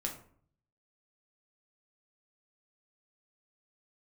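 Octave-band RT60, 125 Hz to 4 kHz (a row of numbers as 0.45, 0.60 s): 0.95, 0.70, 0.55, 0.55, 0.40, 0.30 s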